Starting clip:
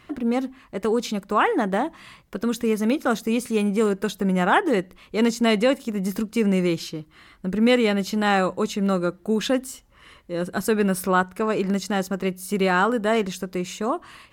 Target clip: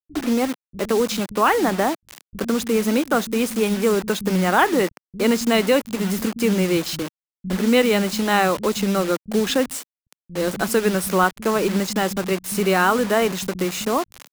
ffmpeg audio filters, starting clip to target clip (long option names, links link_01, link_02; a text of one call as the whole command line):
ffmpeg -i in.wav -filter_complex "[0:a]asplit=2[link_01][link_02];[link_02]acompressor=threshold=-27dB:ratio=16,volume=2dB[link_03];[link_01][link_03]amix=inputs=2:normalize=0,acrusher=bits=4:mix=0:aa=0.000001,acrossover=split=170[link_04][link_05];[link_05]adelay=60[link_06];[link_04][link_06]amix=inputs=2:normalize=0" out.wav